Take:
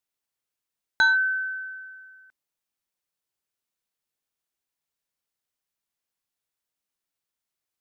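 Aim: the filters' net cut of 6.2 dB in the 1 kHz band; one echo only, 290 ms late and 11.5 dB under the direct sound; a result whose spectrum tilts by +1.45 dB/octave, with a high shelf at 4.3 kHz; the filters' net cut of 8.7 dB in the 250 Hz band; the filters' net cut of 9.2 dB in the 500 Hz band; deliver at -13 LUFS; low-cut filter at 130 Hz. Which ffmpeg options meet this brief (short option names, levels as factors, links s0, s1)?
-af "highpass=130,equalizer=f=250:t=o:g=-8,equalizer=f=500:t=o:g=-9,equalizer=f=1000:t=o:g=-3.5,highshelf=f=4300:g=-8.5,aecho=1:1:290:0.266,volume=4.47"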